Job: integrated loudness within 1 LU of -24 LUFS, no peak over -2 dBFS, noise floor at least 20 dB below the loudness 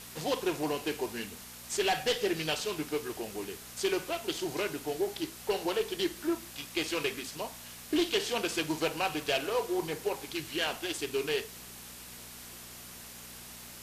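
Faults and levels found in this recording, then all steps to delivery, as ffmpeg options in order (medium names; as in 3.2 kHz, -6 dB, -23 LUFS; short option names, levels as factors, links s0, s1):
hum 60 Hz; highest harmonic 240 Hz; hum level -54 dBFS; noise floor -48 dBFS; noise floor target -53 dBFS; loudness -33.0 LUFS; peak level -17.5 dBFS; loudness target -24.0 LUFS
-> -af "bandreject=f=60:t=h:w=4,bandreject=f=120:t=h:w=4,bandreject=f=180:t=h:w=4,bandreject=f=240:t=h:w=4"
-af "afftdn=nr=6:nf=-48"
-af "volume=2.82"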